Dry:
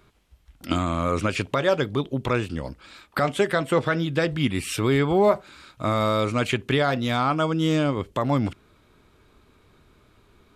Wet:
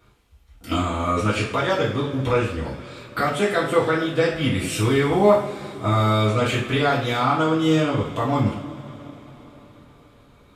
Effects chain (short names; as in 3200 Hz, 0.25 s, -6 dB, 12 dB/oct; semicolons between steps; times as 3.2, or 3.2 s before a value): two-slope reverb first 0.45 s, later 5 s, from -22 dB, DRR -7.5 dB; gain -5.5 dB